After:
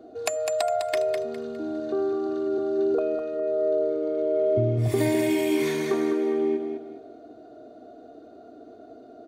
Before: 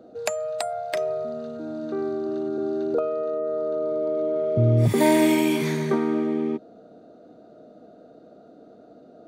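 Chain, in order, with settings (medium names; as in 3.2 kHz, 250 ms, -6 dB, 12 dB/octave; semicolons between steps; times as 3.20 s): comb 2.8 ms, depth 88%; compression 6:1, threshold -20 dBFS, peak gain reduction 9 dB; on a send: feedback delay 204 ms, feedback 31%, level -6.5 dB; on the sum: trim -1 dB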